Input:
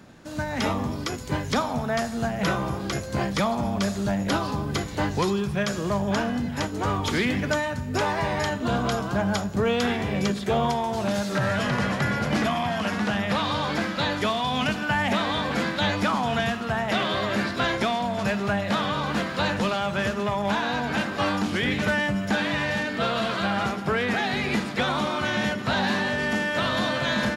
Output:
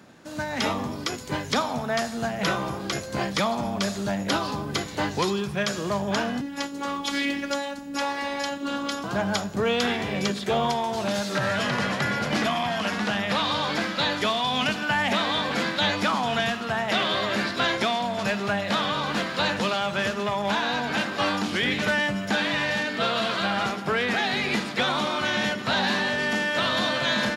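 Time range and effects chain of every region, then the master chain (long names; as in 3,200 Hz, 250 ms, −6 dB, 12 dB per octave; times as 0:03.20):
0:06.41–0:09.04: parametric band 680 Hz −8 dB 0.2 octaves + phases set to zero 281 Hz
whole clip: high-pass filter 190 Hz 6 dB per octave; dynamic equaliser 4,000 Hz, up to +4 dB, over −41 dBFS, Q 0.84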